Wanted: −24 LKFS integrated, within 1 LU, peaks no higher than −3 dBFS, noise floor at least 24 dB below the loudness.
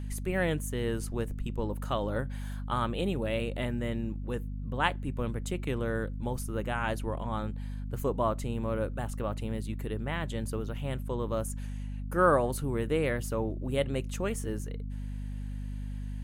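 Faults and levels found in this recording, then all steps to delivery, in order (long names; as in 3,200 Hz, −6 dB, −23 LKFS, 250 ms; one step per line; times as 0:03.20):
mains hum 50 Hz; hum harmonics up to 250 Hz; level of the hum −34 dBFS; integrated loudness −33.0 LKFS; sample peak −10.0 dBFS; target loudness −24.0 LKFS
→ hum removal 50 Hz, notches 5
level +9 dB
brickwall limiter −3 dBFS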